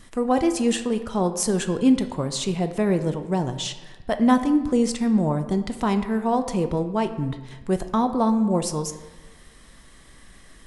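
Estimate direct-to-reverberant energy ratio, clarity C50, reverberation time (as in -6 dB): 8.0 dB, 11.0 dB, 1.2 s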